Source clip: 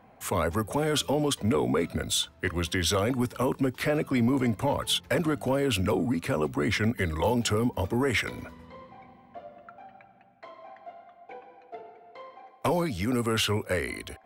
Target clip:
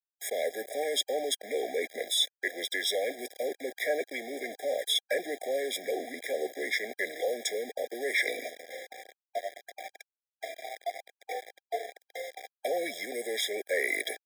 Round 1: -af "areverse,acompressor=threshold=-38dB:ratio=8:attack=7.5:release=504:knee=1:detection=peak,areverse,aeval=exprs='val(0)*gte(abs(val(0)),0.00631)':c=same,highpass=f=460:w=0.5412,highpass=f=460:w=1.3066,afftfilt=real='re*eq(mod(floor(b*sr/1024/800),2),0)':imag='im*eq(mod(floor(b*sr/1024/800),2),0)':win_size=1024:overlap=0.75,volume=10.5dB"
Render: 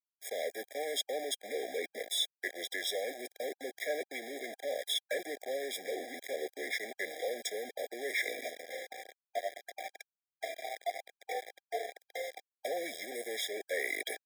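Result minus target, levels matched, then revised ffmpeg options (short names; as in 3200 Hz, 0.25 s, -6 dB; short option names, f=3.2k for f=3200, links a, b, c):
compressor: peak gain reduction +5 dB
-af "areverse,acompressor=threshold=-32dB:ratio=8:attack=7.5:release=504:knee=1:detection=peak,areverse,aeval=exprs='val(0)*gte(abs(val(0)),0.00631)':c=same,highpass=f=460:w=0.5412,highpass=f=460:w=1.3066,afftfilt=real='re*eq(mod(floor(b*sr/1024/800),2),0)':imag='im*eq(mod(floor(b*sr/1024/800),2),0)':win_size=1024:overlap=0.75,volume=10.5dB"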